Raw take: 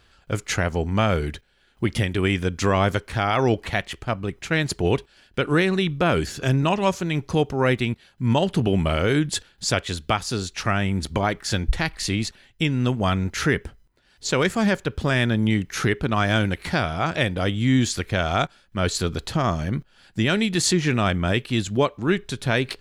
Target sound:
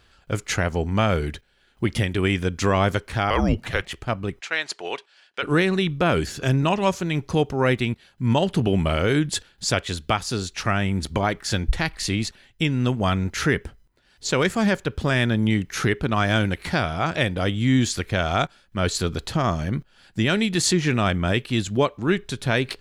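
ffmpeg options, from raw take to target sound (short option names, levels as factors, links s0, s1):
-filter_complex "[0:a]asettb=1/sr,asplit=3[s0][s1][s2];[s0]atrim=end=3.304[s3];[s1]atrim=start=3.3:end=3.85,asetpts=PTS-STARTPTS,afade=t=in:d=0.004:c=qsin,afade=t=out:st=0.546:d=0.004:c=qsin,afreqshift=-190[s4];[s2]atrim=start=3.846[s5];[s3][s4]acrossfade=d=0.004:c1=hsin:c2=qsin[s6];[s6][s5]acrossfade=d=0.004:c1=qsin:c2=hsin,asplit=3[s7][s8][s9];[s7]afade=t=out:st=4.39:d=0.02[s10];[s8]highpass=740,lowpass=6800,afade=t=in:st=4.39:d=0.02,afade=t=out:st=5.42:d=0.02[s11];[s9]afade=t=in:st=5.42:d=0.02[s12];[s10][s11][s12]amix=inputs=3:normalize=0"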